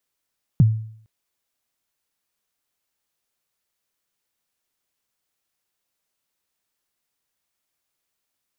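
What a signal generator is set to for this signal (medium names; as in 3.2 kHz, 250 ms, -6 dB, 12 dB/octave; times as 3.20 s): kick drum length 0.46 s, from 180 Hz, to 110 Hz, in 25 ms, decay 0.60 s, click off, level -7.5 dB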